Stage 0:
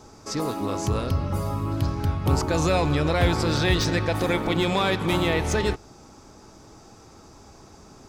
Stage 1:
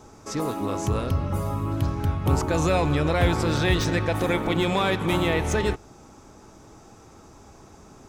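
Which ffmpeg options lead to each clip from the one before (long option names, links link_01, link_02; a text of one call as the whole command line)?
ffmpeg -i in.wav -af "equalizer=frequency=4700:width_type=o:width=0.48:gain=-7" out.wav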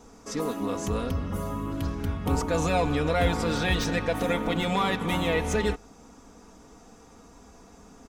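ffmpeg -i in.wav -af "aecho=1:1:4.2:0.68,volume=-3.5dB" out.wav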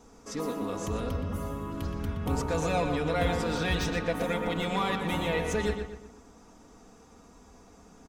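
ffmpeg -i in.wav -filter_complex "[0:a]asplit=2[link_01][link_02];[link_02]adelay=121,lowpass=frequency=3300:poles=1,volume=-6dB,asplit=2[link_03][link_04];[link_04]adelay=121,lowpass=frequency=3300:poles=1,volume=0.42,asplit=2[link_05][link_06];[link_06]adelay=121,lowpass=frequency=3300:poles=1,volume=0.42,asplit=2[link_07][link_08];[link_08]adelay=121,lowpass=frequency=3300:poles=1,volume=0.42,asplit=2[link_09][link_10];[link_10]adelay=121,lowpass=frequency=3300:poles=1,volume=0.42[link_11];[link_01][link_03][link_05][link_07][link_09][link_11]amix=inputs=6:normalize=0,volume=-4dB" out.wav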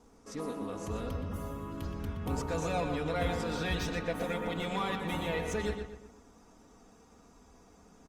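ffmpeg -i in.wav -af "volume=-4.5dB" -ar 48000 -c:a libopus -b:a 32k out.opus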